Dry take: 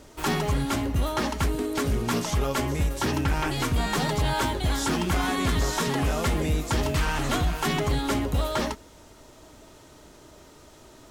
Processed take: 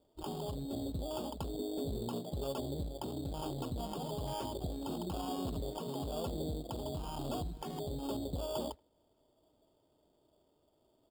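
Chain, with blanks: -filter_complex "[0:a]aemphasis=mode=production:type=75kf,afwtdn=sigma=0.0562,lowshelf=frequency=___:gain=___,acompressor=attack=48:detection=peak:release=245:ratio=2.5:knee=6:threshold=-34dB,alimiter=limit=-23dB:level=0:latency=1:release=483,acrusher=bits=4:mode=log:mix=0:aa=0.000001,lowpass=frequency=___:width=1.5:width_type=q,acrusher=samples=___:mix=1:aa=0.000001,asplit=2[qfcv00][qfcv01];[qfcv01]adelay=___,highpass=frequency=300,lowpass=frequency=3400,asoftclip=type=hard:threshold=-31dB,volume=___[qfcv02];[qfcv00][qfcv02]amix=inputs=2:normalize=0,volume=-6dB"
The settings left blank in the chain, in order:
64, -8.5, 690, 11, 80, -28dB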